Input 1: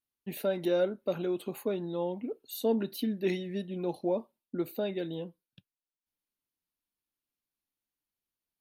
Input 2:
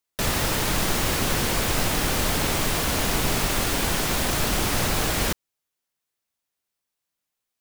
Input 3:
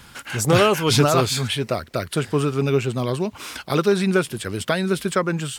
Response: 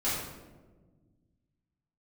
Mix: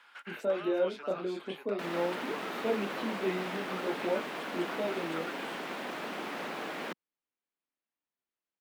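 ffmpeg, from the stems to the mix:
-filter_complex "[0:a]flanger=delay=22.5:depth=4.4:speed=0.43,volume=1.5dB[a];[1:a]highpass=f=180:w=0.5412,highpass=f=180:w=1.3066,adelay=1600,volume=-10dB[b];[2:a]highpass=870,acompressor=threshold=-32dB:ratio=6,volume=-8dB[c];[a][b][c]amix=inputs=3:normalize=0,acrossover=split=190 3200:gain=0.178 1 0.1[d][e][f];[d][e][f]amix=inputs=3:normalize=0"

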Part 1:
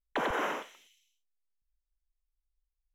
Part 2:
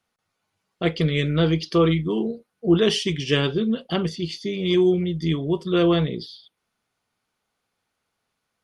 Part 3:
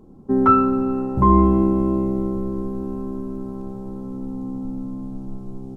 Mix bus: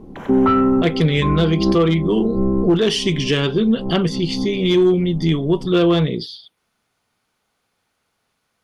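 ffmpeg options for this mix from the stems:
-filter_complex "[0:a]volume=-11.5dB[a];[1:a]aeval=exprs='clip(val(0),-1,0.224)':c=same,volume=0.5dB,asplit=2[b][c];[2:a]lowpass=f=2.2k:w=0.5412,lowpass=f=2.2k:w=1.3066,equalizer=f=1.5k:w=3.8:g=-9,volume=2dB[d];[c]apad=whole_len=254132[e];[d][e]sidechaincompress=threshold=-34dB:ratio=8:attack=16:release=102[f];[a][b][f]amix=inputs=3:normalize=0,acontrast=64,alimiter=limit=-8dB:level=0:latency=1:release=329"

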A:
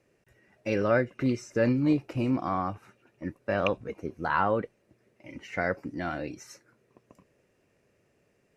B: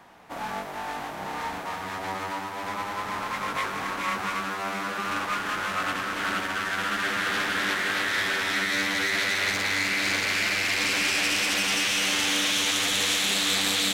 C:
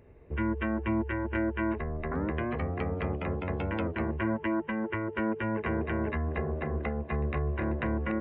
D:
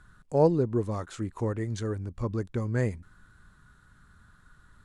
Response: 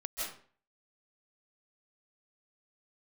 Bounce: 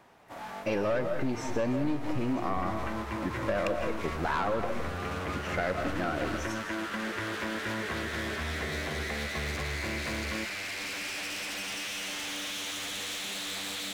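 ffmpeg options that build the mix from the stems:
-filter_complex "[0:a]aeval=exprs='(tanh(12.6*val(0)+0.35)-tanh(0.35))/12.6':c=same,volume=1dB,asplit=2[a][b];[b]volume=-7.5dB[c];[1:a]asoftclip=type=tanh:threshold=-25dB,volume=-7.5dB[d];[2:a]acompressor=threshold=-34dB:ratio=6,adelay=2250,volume=0.5dB[e];[3:a]adelay=600,volume=-15dB[f];[4:a]atrim=start_sample=2205[g];[c][g]afir=irnorm=-1:irlink=0[h];[a][d][e][f][h]amix=inputs=5:normalize=0,equalizer=f=620:w=4:g=3,acompressor=threshold=-26dB:ratio=4"

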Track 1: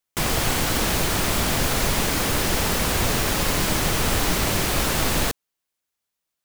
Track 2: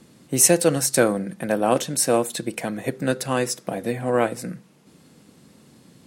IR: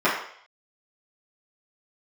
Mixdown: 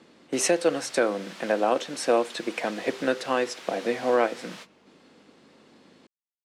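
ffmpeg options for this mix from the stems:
-filter_complex "[0:a]highpass=f=1.3k:p=1,aeval=exprs='(mod(25.1*val(0)+1,2)-1)/25.1':c=same,volume=-3.5dB[a];[1:a]highpass=150,aeval=exprs='val(0)+0.00224*(sin(2*PI*50*n/s)+sin(2*PI*2*50*n/s)/2+sin(2*PI*3*50*n/s)/3+sin(2*PI*4*50*n/s)/4+sin(2*PI*5*50*n/s)/5)':c=same,volume=1.5dB,asplit=2[b][c];[c]apad=whole_len=284157[d];[a][d]sidechaingate=range=-33dB:threshold=-41dB:ratio=16:detection=peak[e];[e][b]amix=inputs=2:normalize=0,highpass=310,lowpass=4k,alimiter=limit=-11dB:level=0:latency=1:release=496"

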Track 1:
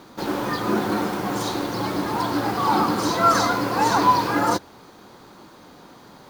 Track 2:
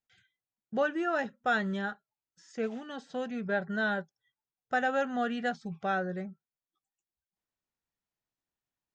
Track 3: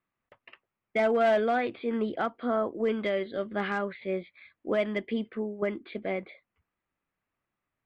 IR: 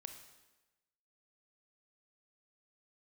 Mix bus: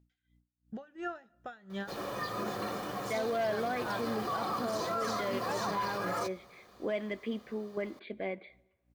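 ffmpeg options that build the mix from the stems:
-filter_complex "[0:a]aecho=1:1:1.7:0.57,adelay=1700,volume=-12.5dB,asplit=2[a][b];[b]volume=-13dB[c];[1:a]alimiter=level_in=4.5dB:limit=-24dB:level=0:latency=1:release=24,volume=-4.5dB,aeval=exprs='val(0)+0.000794*(sin(2*PI*60*n/s)+sin(2*PI*2*60*n/s)/2+sin(2*PI*3*60*n/s)/3+sin(2*PI*4*60*n/s)/4+sin(2*PI*5*60*n/s)/5)':c=same,aeval=exprs='val(0)*pow(10,-25*(0.5-0.5*cos(2*PI*2.8*n/s))/20)':c=same,volume=-0.5dB,asplit=2[d][e];[e]volume=-14dB[f];[2:a]bandreject=f=1.3k:w=6.6,adelay=2150,volume=-5.5dB,asplit=2[g][h];[h]volume=-10dB[i];[3:a]atrim=start_sample=2205[j];[c][f][i]amix=inputs=3:normalize=0[k];[k][j]afir=irnorm=-1:irlink=0[l];[a][d][g][l]amix=inputs=4:normalize=0,lowshelf=f=150:g=-5,alimiter=level_in=1dB:limit=-24dB:level=0:latency=1:release=39,volume=-1dB"

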